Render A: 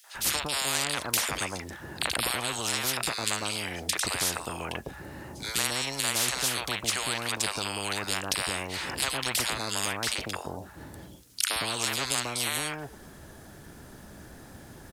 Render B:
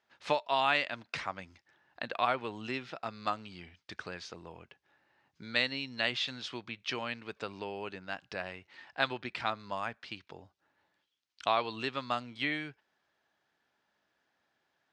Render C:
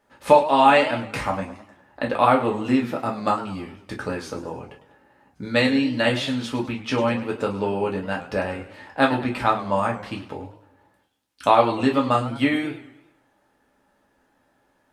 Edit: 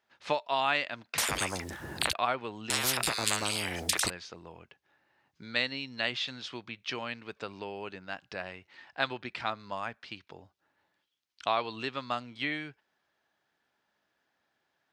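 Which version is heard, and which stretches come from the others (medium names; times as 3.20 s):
B
1.18–2.13 s: from A
2.70–4.10 s: from A
not used: C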